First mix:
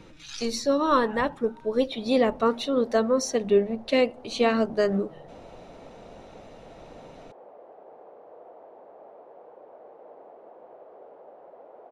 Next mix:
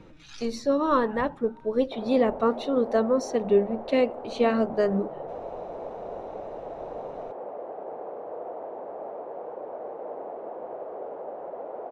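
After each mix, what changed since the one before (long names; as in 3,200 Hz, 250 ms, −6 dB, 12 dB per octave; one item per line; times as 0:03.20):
background +12.0 dB
master: add high-shelf EQ 2,600 Hz −11 dB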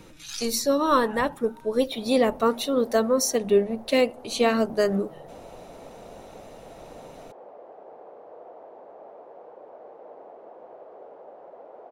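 background −10.0 dB
master: remove head-to-tape spacing loss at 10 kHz 25 dB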